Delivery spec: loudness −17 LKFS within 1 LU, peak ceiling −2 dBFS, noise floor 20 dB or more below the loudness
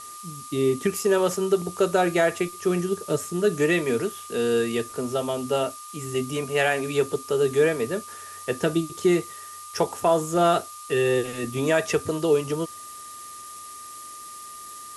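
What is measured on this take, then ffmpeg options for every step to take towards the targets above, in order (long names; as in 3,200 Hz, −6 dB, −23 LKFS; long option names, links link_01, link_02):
interfering tone 1,200 Hz; level of the tone −40 dBFS; background noise floor −41 dBFS; target noise floor −45 dBFS; integrated loudness −24.5 LKFS; sample peak −8.5 dBFS; target loudness −17.0 LKFS
→ -af "bandreject=frequency=1200:width=30"
-af "afftdn=noise_reduction=6:noise_floor=-41"
-af "volume=7.5dB,alimiter=limit=-2dB:level=0:latency=1"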